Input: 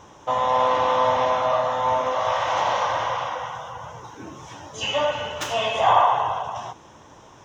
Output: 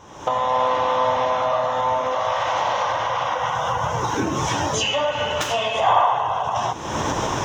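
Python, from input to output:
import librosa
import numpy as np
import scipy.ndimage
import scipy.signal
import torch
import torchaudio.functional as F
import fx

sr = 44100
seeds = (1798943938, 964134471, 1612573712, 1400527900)

y = fx.recorder_agc(x, sr, target_db=-14.0, rise_db_per_s=51.0, max_gain_db=30)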